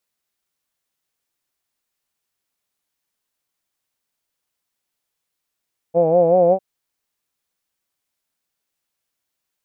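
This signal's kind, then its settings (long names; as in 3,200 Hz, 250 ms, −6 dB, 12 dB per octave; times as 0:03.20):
vowel from formants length 0.65 s, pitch 163 Hz, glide +2 semitones, F1 530 Hz, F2 750 Hz, F3 2,400 Hz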